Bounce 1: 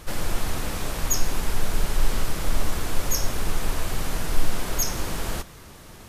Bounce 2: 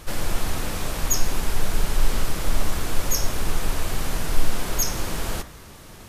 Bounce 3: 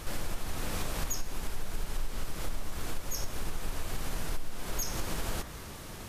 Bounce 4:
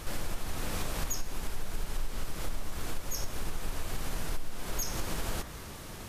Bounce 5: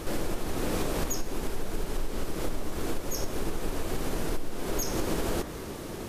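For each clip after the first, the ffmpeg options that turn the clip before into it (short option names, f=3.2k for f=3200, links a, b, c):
-af "bandreject=f=59.37:t=h:w=4,bandreject=f=118.74:t=h:w=4,bandreject=f=178.11:t=h:w=4,bandreject=f=237.48:t=h:w=4,bandreject=f=296.85:t=h:w=4,bandreject=f=356.22:t=h:w=4,bandreject=f=415.59:t=h:w=4,bandreject=f=474.96:t=h:w=4,bandreject=f=534.33:t=h:w=4,bandreject=f=593.7:t=h:w=4,bandreject=f=653.07:t=h:w=4,bandreject=f=712.44:t=h:w=4,bandreject=f=771.81:t=h:w=4,bandreject=f=831.18:t=h:w=4,bandreject=f=890.55:t=h:w=4,bandreject=f=949.92:t=h:w=4,bandreject=f=1.00929k:t=h:w=4,bandreject=f=1.06866k:t=h:w=4,bandreject=f=1.12803k:t=h:w=4,bandreject=f=1.1874k:t=h:w=4,bandreject=f=1.24677k:t=h:w=4,bandreject=f=1.30614k:t=h:w=4,bandreject=f=1.36551k:t=h:w=4,bandreject=f=1.42488k:t=h:w=4,bandreject=f=1.48425k:t=h:w=4,bandreject=f=1.54362k:t=h:w=4,bandreject=f=1.60299k:t=h:w=4,bandreject=f=1.66236k:t=h:w=4,bandreject=f=1.72173k:t=h:w=4,bandreject=f=1.7811k:t=h:w=4,bandreject=f=1.84047k:t=h:w=4,bandreject=f=1.89984k:t=h:w=4,bandreject=f=1.95921k:t=h:w=4,bandreject=f=2.01858k:t=h:w=4,bandreject=f=2.07795k:t=h:w=4,bandreject=f=2.13732k:t=h:w=4,bandreject=f=2.19669k:t=h:w=4,volume=1.5dB"
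-af "acompressor=threshold=-28dB:ratio=6"
-af anull
-af "equalizer=f=360:t=o:w=1.7:g=11.5,volume=1.5dB"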